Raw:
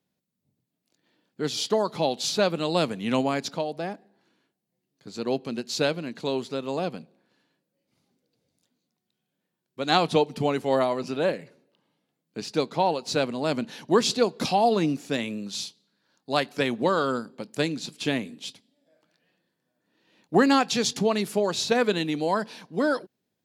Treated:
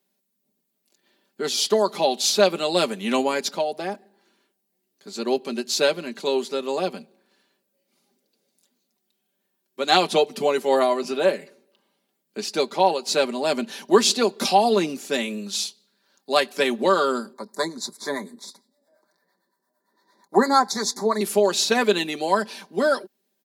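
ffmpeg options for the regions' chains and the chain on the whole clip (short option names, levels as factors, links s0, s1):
-filter_complex "[0:a]asettb=1/sr,asplit=3[s0][s1][s2];[s0]atrim=end=17.334[s3];[s1]atrim=start=17.33:end=21.21,asetpts=PTS-STARTPTS,afade=t=in:d=0.004:c=qsin,afade=t=out:st=3.876:d=0.004:c=qsin,equalizer=f=1000:t=o:w=0.37:g=13,acrossover=split=590[s4][s5];[s4]aeval=exprs='val(0)*(1-0.7/2+0.7/2*cos(2*PI*8.8*n/s))':c=same[s6];[s5]aeval=exprs='val(0)*(1-0.7/2-0.7/2*cos(2*PI*8.8*n/s))':c=same[s7];[s6][s7]amix=inputs=2:normalize=0,asuperstop=centerf=2800:order=8:qfactor=1.8[s8];[s2]atrim=start=21.206[s9];[s3][s8]acrossfade=d=0.004:c1=hsin:c2=qsin[s10];[s10][s9]acrossfade=d=0.004:c1=qsin:c2=hsin,highpass=f=230:w=0.5412,highpass=f=230:w=1.3066,highshelf=f=7900:g=9.5,aecho=1:1:5.1:0.65,volume=1.33"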